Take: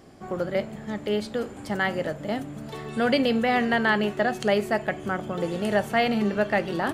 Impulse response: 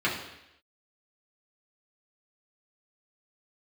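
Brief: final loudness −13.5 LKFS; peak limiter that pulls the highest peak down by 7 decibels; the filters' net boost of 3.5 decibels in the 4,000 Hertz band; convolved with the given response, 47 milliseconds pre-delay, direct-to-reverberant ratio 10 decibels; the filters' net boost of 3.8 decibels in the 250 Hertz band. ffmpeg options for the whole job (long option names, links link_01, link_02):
-filter_complex "[0:a]equalizer=frequency=250:width_type=o:gain=4.5,equalizer=frequency=4000:width_type=o:gain=5,alimiter=limit=-13.5dB:level=0:latency=1,asplit=2[link_01][link_02];[1:a]atrim=start_sample=2205,adelay=47[link_03];[link_02][link_03]afir=irnorm=-1:irlink=0,volume=-22.5dB[link_04];[link_01][link_04]amix=inputs=2:normalize=0,volume=11dB"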